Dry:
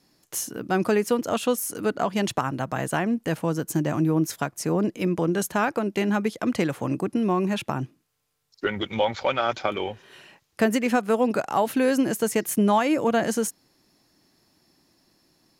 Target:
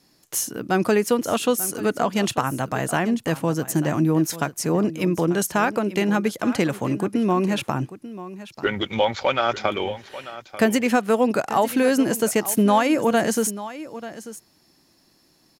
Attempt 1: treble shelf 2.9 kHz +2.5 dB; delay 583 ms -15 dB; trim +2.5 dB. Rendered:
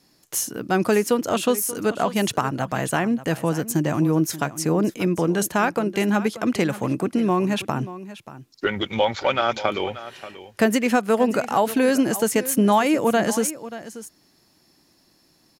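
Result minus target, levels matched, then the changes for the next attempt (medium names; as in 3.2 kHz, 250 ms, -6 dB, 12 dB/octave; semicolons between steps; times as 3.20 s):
echo 307 ms early
change: delay 890 ms -15 dB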